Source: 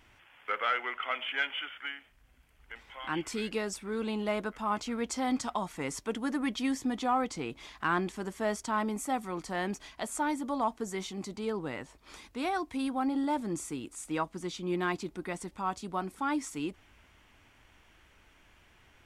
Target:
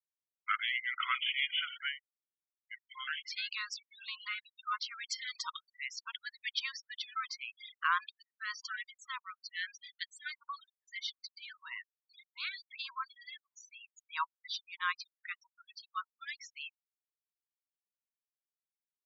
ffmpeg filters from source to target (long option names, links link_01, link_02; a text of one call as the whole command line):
ffmpeg -i in.wav -af "lowpass=frequency=4600:width_type=q:width=2.2,afftfilt=real='re*gte(hypot(re,im),0.0158)':imag='im*gte(hypot(re,im),0.0158)':win_size=1024:overlap=0.75,afftfilt=real='re*gte(b*sr/1024,910*pow(1900/910,0.5+0.5*sin(2*PI*1.6*pts/sr)))':imag='im*gte(b*sr/1024,910*pow(1900/910,0.5+0.5*sin(2*PI*1.6*pts/sr)))':win_size=1024:overlap=0.75" out.wav